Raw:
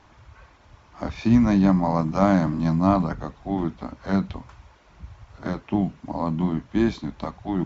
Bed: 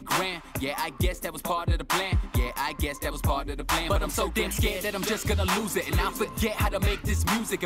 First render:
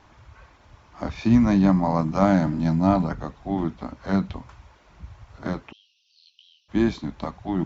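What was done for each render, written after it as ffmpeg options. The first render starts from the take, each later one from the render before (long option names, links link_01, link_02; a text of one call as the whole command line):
ffmpeg -i in.wav -filter_complex "[0:a]asettb=1/sr,asplit=3[link_01][link_02][link_03];[link_01]atrim=end=2.254[link_04];[link_02]atrim=start=2.25:end=3.07,asetpts=PTS-STARTPTS,afade=type=in:duration=0.004:curve=qsin,afade=type=out:start_time=0.816:duration=0.004:curve=qsin,asuperstop=centerf=1100:order=4:qfactor=6.2[link_05];[link_03]atrim=start=3.066[link_06];[link_04][link_05]acrossfade=duration=0.004:curve1=hsin:curve2=qsin[link_07];[link_07][link_06]acrossfade=duration=0.004:curve1=qsin:curve2=hsin,asplit=3[link_08][link_09][link_10];[link_08]afade=type=out:start_time=5.71:duration=0.02[link_11];[link_09]asuperpass=centerf=4000:order=20:qfactor=1.2,afade=type=in:start_time=5.71:duration=0.02,afade=type=out:start_time=6.68:duration=0.02[link_12];[link_10]afade=type=in:start_time=6.68:duration=0.02[link_13];[link_11][link_12][link_13]amix=inputs=3:normalize=0" out.wav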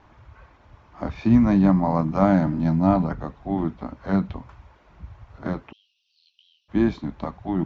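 ffmpeg -i in.wav -af "aemphasis=mode=reproduction:type=75fm" out.wav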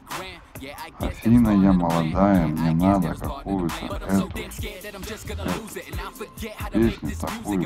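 ffmpeg -i in.wav -i bed.wav -filter_complex "[1:a]volume=-6.5dB[link_01];[0:a][link_01]amix=inputs=2:normalize=0" out.wav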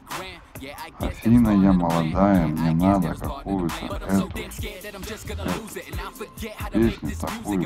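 ffmpeg -i in.wav -af anull out.wav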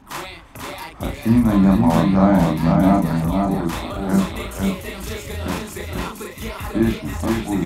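ffmpeg -i in.wav -filter_complex "[0:a]asplit=2[link_01][link_02];[link_02]adelay=36,volume=-2.5dB[link_03];[link_01][link_03]amix=inputs=2:normalize=0,aecho=1:1:492:0.668" out.wav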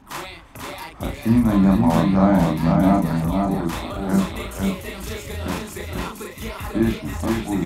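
ffmpeg -i in.wav -af "volume=-1.5dB" out.wav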